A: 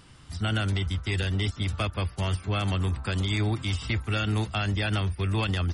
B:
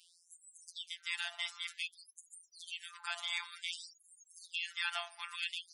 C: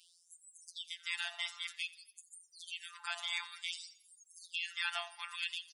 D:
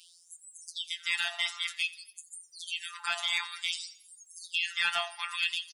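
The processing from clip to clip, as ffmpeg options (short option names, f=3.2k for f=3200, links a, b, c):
-af "afftfilt=real='hypot(re,im)*cos(PI*b)':imag='0':win_size=1024:overlap=0.75,bandreject=f=170.3:t=h:w=4,bandreject=f=340.6:t=h:w=4,bandreject=f=510.9:t=h:w=4,bandreject=f=681.2:t=h:w=4,bandreject=f=851.5:t=h:w=4,bandreject=f=1.0218k:t=h:w=4,bandreject=f=1.1921k:t=h:w=4,bandreject=f=1.3624k:t=h:w=4,bandreject=f=1.5327k:t=h:w=4,bandreject=f=1.703k:t=h:w=4,bandreject=f=1.8733k:t=h:w=4,bandreject=f=2.0436k:t=h:w=4,bandreject=f=2.2139k:t=h:w=4,bandreject=f=2.3842k:t=h:w=4,bandreject=f=2.5545k:t=h:w=4,bandreject=f=2.7248k:t=h:w=4,bandreject=f=2.8951k:t=h:w=4,bandreject=f=3.0654k:t=h:w=4,bandreject=f=3.2357k:t=h:w=4,bandreject=f=3.406k:t=h:w=4,bandreject=f=3.5763k:t=h:w=4,bandreject=f=3.7466k:t=h:w=4,bandreject=f=3.9169k:t=h:w=4,bandreject=f=4.0872k:t=h:w=4,bandreject=f=4.2575k:t=h:w=4,bandreject=f=4.4278k:t=h:w=4,bandreject=f=4.5981k:t=h:w=4,afftfilt=real='re*gte(b*sr/1024,630*pow(6700/630,0.5+0.5*sin(2*PI*0.54*pts/sr)))':imag='im*gte(b*sr/1024,630*pow(6700/630,0.5+0.5*sin(2*PI*0.54*pts/sr)))':win_size=1024:overlap=0.75,volume=-1dB"
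-af "aecho=1:1:86|172|258|344:0.106|0.0498|0.0234|0.011"
-filter_complex "[0:a]asplit=2[a][b];[b]volume=27.5dB,asoftclip=hard,volume=-27.5dB,volume=-7dB[c];[a][c]amix=inputs=2:normalize=0,asplit=2[d][e];[e]adelay=19,volume=-13dB[f];[d][f]amix=inputs=2:normalize=0,volume=5dB"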